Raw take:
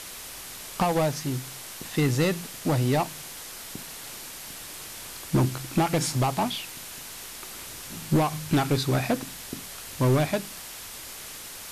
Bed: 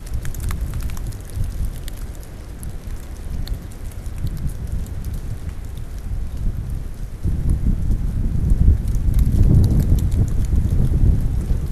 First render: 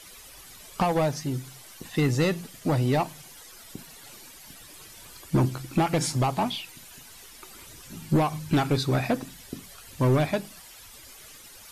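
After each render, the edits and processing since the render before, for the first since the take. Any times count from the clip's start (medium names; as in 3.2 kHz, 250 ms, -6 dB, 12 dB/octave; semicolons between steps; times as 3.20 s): noise reduction 12 dB, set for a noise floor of -41 dBFS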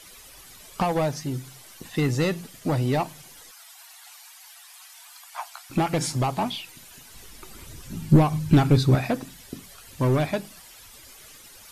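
3.51–5.70 s: steep high-pass 680 Hz 96 dB/octave; 7.14–8.95 s: bass shelf 260 Hz +11 dB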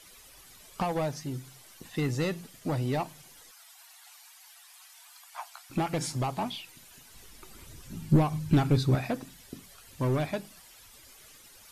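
trim -6 dB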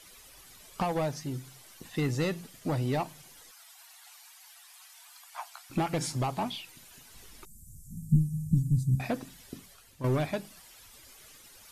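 7.45–9.00 s: elliptic band-stop 190–7500 Hz, stop band 60 dB; 9.55–10.04 s: fade out, to -10.5 dB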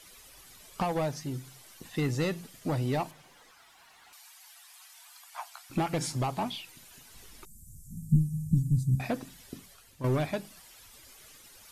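3.11–4.13 s: overdrive pedal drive 16 dB, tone 1.1 kHz, clips at -39 dBFS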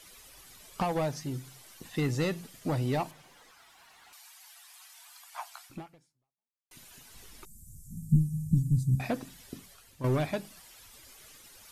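5.65–6.71 s: fade out exponential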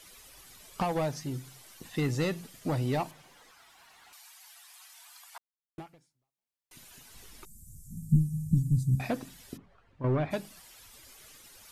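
5.38–5.78 s: mute; 9.56–10.30 s: low-pass 1.1 kHz -> 2.3 kHz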